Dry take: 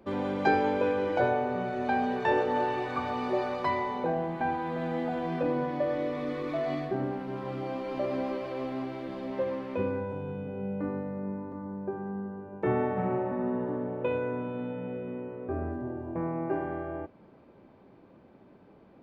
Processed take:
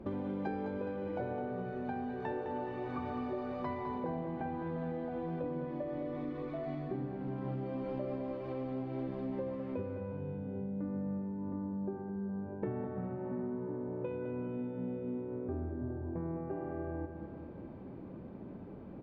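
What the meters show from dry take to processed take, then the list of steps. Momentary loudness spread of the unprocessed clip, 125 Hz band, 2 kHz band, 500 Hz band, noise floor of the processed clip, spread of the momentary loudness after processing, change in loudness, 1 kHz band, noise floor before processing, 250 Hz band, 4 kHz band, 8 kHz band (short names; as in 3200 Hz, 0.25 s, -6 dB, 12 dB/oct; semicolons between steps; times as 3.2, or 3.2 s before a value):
10 LU, -2.5 dB, -14.5 dB, -8.5 dB, -47 dBFS, 3 LU, -8.0 dB, -12.0 dB, -56 dBFS, -4.5 dB, under -15 dB, n/a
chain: LPF 3000 Hz 6 dB/oct; low shelf 420 Hz +12 dB; compressor, threshold -37 dBFS, peak gain reduction 20.5 dB; feedback echo 0.208 s, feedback 56%, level -8.5 dB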